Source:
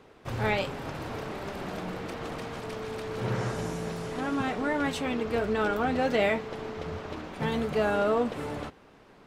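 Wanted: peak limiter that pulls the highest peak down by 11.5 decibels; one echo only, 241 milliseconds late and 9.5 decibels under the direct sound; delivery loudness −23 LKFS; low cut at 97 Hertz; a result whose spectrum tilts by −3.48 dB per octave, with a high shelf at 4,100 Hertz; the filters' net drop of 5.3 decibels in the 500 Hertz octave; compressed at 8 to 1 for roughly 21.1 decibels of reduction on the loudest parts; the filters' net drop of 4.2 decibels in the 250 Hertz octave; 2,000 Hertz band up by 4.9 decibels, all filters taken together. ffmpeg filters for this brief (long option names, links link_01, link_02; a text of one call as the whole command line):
ffmpeg -i in.wav -af "highpass=97,equalizer=frequency=250:width_type=o:gain=-3.5,equalizer=frequency=500:width_type=o:gain=-6,equalizer=frequency=2000:width_type=o:gain=7.5,highshelf=frequency=4100:gain=-4.5,acompressor=threshold=-44dB:ratio=8,alimiter=level_in=18.5dB:limit=-24dB:level=0:latency=1,volume=-18.5dB,aecho=1:1:241:0.335,volume=27.5dB" out.wav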